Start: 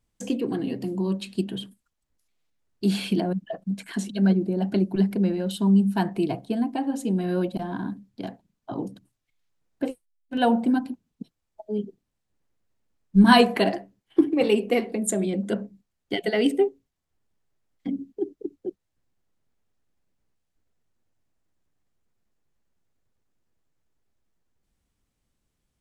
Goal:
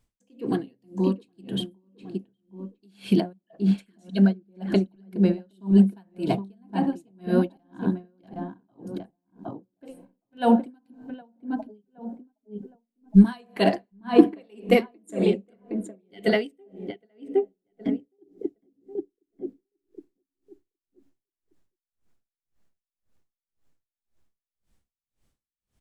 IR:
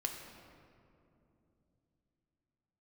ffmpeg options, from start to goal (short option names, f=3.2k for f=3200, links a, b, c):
-filter_complex "[0:a]asplit=2[a][b];[b]adelay=766,lowpass=f=1.2k:p=1,volume=-5dB,asplit=2[c][d];[d]adelay=766,lowpass=f=1.2k:p=1,volume=0.3,asplit=2[e][f];[f]adelay=766,lowpass=f=1.2k:p=1,volume=0.3,asplit=2[g][h];[h]adelay=766,lowpass=f=1.2k:p=1,volume=0.3[i];[a][c][e][g][i]amix=inputs=5:normalize=0,asplit=2[j][k];[1:a]atrim=start_sample=2205,asetrate=70560,aresample=44100[l];[k][l]afir=irnorm=-1:irlink=0,volume=-18dB[m];[j][m]amix=inputs=2:normalize=0,aeval=exprs='val(0)*pow(10,-40*(0.5-0.5*cos(2*PI*1.9*n/s))/20)':c=same,volume=4dB"